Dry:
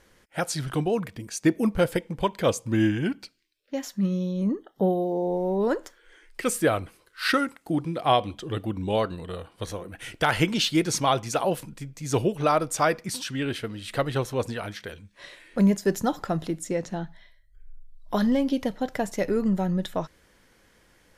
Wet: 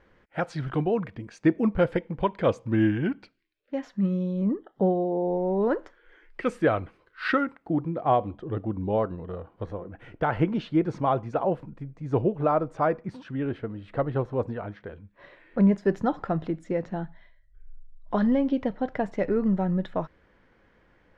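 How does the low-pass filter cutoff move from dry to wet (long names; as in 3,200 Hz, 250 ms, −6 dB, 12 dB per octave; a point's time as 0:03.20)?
0:07.29 2,100 Hz
0:07.99 1,100 Hz
0:14.85 1,100 Hz
0:15.81 2,000 Hz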